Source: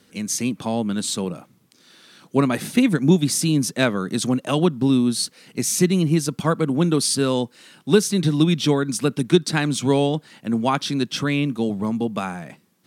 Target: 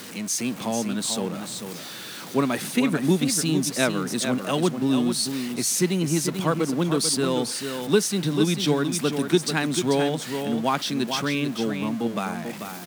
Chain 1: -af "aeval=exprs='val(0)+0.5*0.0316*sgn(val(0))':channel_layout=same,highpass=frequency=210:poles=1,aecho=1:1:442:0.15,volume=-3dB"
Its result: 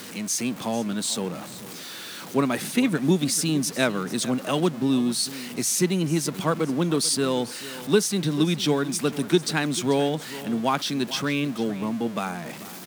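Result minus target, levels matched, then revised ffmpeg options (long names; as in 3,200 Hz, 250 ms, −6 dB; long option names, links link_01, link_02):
echo-to-direct −9 dB
-af "aeval=exprs='val(0)+0.5*0.0316*sgn(val(0))':channel_layout=same,highpass=frequency=210:poles=1,aecho=1:1:442:0.422,volume=-3dB"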